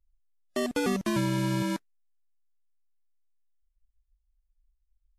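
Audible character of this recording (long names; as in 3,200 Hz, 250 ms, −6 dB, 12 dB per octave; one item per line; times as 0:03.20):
background noise floor −76 dBFS
spectral slope −5.5 dB per octave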